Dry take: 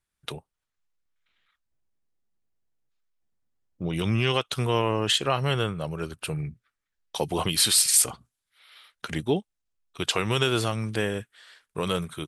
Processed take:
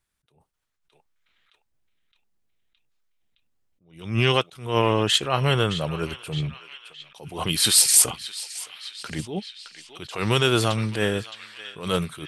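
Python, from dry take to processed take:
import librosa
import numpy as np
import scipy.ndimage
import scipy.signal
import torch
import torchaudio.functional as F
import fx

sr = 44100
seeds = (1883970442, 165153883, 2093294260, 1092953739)

y = fx.echo_banded(x, sr, ms=616, feedback_pct=71, hz=2900.0, wet_db=-13)
y = fx.attack_slew(y, sr, db_per_s=120.0)
y = F.gain(torch.from_numpy(y), 4.5).numpy()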